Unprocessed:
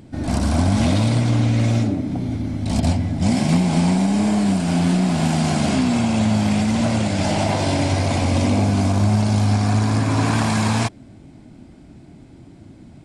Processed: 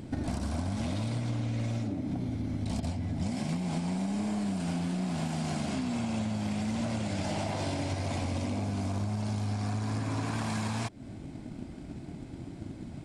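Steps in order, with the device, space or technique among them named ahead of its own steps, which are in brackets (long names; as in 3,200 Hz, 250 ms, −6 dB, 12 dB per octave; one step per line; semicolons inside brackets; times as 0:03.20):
drum-bus smash (transient designer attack +7 dB, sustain +1 dB; downward compressor 10 to 1, threshold −28 dBFS, peak gain reduction 17.5 dB; soft clipping −23 dBFS, distortion −22 dB)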